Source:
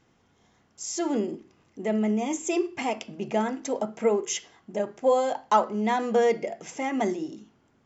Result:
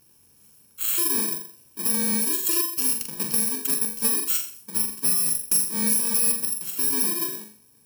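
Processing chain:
samples in bit-reversed order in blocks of 64 samples
high-shelf EQ 4,700 Hz +11.5 dB
downward compressor 4 to 1, threshold −19 dBFS, peak gain reduction 12.5 dB
harmonic generator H 2 −25 dB, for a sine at −13.5 dBFS
flutter between parallel walls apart 7.3 metres, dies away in 0.44 s

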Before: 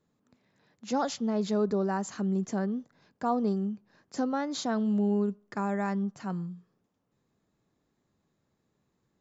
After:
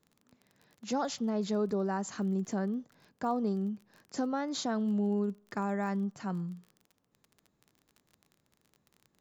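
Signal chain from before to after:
downward compressor 1.5 to 1, threshold −33 dBFS, peak gain reduction 4 dB
surface crackle 26 per second −44 dBFS

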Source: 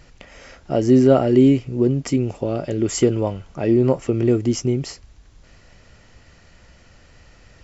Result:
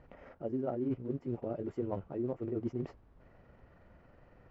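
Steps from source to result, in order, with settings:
one scale factor per block 5 bits
low-pass filter 1,100 Hz 12 dB per octave
low-shelf EQ 120 Hz −8.5 dB
reversed playback
downward compressor 8 to 1, threshold −27 dBFS, peak gain reduction 17 dB
reversed playback
time stretch by overlap-add 0.59×, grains 92 ms
level −4 dB

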